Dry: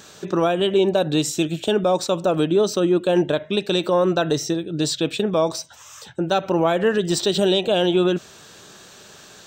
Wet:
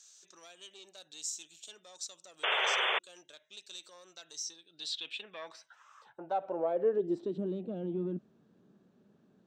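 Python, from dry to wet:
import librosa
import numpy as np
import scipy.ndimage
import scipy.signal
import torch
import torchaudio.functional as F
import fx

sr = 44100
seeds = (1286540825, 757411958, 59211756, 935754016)

y = fx.diode_clip(x, sr, knee_db=-10.5)
y = fx.filter_sweep_bandpass(y, sr, from_hz=6500.0, to_hz=220.0, start_s=4.37, end_s=7.53, q=2.6)
y = fx.spec_paint(y, sr, seeds[0], shape='noise', start_s=2.43, length_s=0.56, low_hz=380.0, high_hz=3600.0, level_db=-23.0)
y = F.gain(torch.from_numpy(y), -7.0).numpy()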